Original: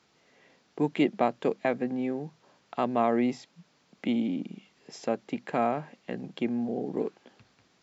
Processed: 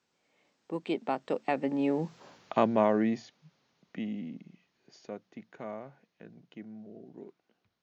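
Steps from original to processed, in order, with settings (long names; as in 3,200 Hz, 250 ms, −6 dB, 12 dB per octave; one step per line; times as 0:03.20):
source passing by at 0:02.24, 35 m/s, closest 9.4 metres
level +7.5 dB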